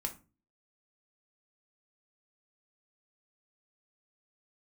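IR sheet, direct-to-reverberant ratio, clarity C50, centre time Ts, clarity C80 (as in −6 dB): 3.5 dB, 13.5 dB, 10 ms, 20.5 dB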